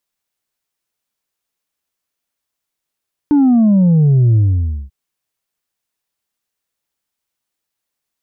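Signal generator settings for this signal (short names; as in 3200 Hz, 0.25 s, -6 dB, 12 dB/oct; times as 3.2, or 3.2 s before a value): sub drop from 300 Hz, over 1.59 s, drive 2.5 dB, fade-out 0.54 s, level -8 dB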